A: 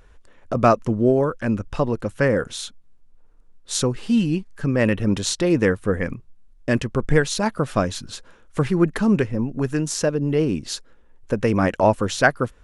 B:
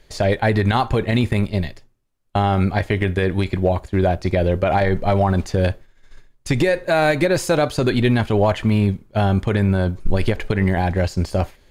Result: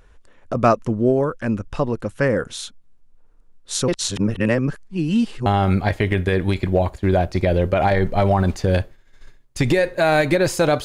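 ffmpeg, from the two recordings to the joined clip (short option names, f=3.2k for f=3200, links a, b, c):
-filter_complex "[0:a]apad=whole_dur=10.84,atrim=end=10.84,asplit=2[a][b];[a]atrim=end=3.882[c];[b]atrim=start=3.878:end=5.462,asetpts=PTS-STARTPTS,areverse[d];[1:a]atrim=start=2.358:end=7.74[e];[c][d]acrossfade=d=0.004:c1=hsin:c2=hsin[f];[f][e]acrossfade=d=0.004:c1=hsin:c2=hsin"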